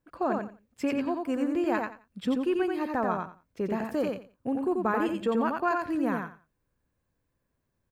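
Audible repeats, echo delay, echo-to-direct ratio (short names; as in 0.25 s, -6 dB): 3, 88 ms, -3.5 dB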